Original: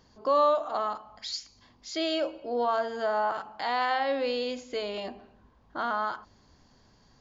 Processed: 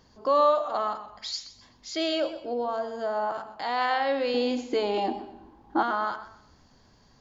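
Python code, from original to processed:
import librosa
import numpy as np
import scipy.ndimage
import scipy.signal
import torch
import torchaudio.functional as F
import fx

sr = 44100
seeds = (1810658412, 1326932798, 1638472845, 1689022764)

y = fx.peak_eq(x, sr, hz=2200.0, db=fx.line((2.53, -12.0), (3.77, -2.5)), octaves=2.7, at=(2.53, 3.77), fade=0.02)
y = fx.small_body(y, sr, hz=(320.0, 810.0), ring_ms=40, db=17, at=(4.34, 5.83))
y = fx.echo_warbled(y, sr, ms=126, feedback_pct=31, rate_hz=2.8, cents=72, wet_db=-14.0)
y = y * 10.0 ** (1.5 / 20.0)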